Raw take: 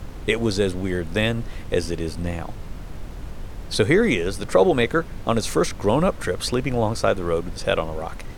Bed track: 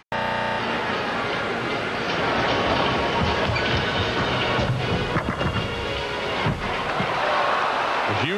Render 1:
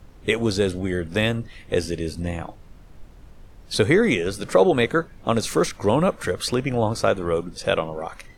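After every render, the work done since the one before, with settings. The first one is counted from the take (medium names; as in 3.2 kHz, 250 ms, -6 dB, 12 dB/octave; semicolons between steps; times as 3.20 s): noise print and reduce 12 dB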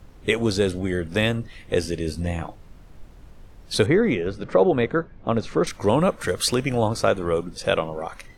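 2.06–2.48 s: doubling 13 ms -7 dB; 3.86–5.67 s: tape spacing loss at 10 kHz 26 dB; 6.28–6.88 s: treble shelf 3.8 kHz +7 dB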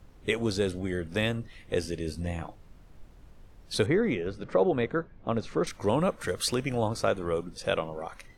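trim -6.5 dB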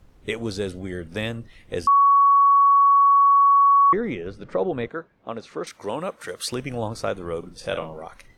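1.87–3.93 s: bleep 1.12 kHz -12 dBFS; 4.88–6.52 s: high-pass 410 Hz 6 dB/octave; 7.39–7.99 s: doubling 43 ms -8 dB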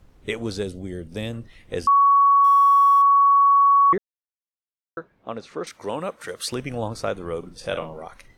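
0.63–1.33 s: peaking EQ 1.5 kHz -10 dB 1.8 oct; 2.44–3.02 s: companding laws mixed up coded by mu; 3.98–4.97 s: mute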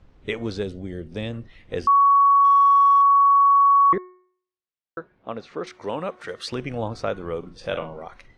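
low-pass 4.5 kHz 12 dB/octave; de-hum 365.6 Hz, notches 6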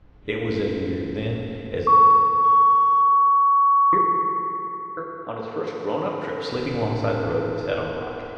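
distance through air 120 m; FDN reverb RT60 3.5 s, high-frequency decay 0.8×, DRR -2.5 dB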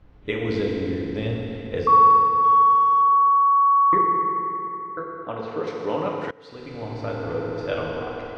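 6.31–7.99 s: fade in, from -22.5 dB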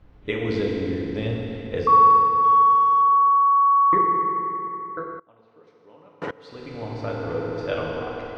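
5.19–6.22 s: inverted gate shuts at -31 dBFS, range -25 dB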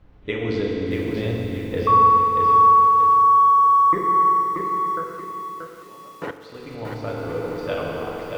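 spring tank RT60 1.5 s, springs 43 ms, chirp 75 ms, DRR 11.5 dB; bit-crushed delay 632 ms, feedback 35%, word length 8-bit, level -4.5 dB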